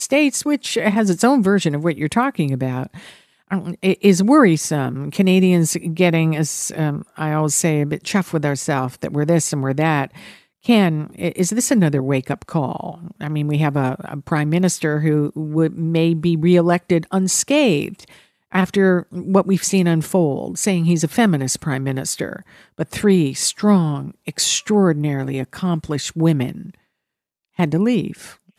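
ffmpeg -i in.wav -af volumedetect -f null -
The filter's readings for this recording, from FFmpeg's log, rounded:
mean_volume: -18.3 dB
max_volume: -1.8 dB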